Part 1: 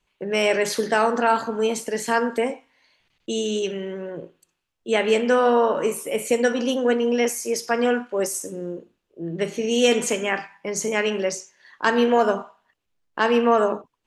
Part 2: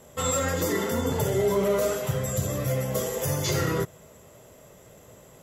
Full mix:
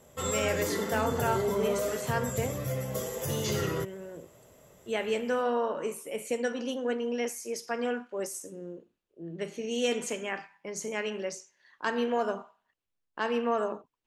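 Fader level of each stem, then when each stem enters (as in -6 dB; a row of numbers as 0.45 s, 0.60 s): -10.5 dB, -6.0 dB; 0.00 s, 0.00 s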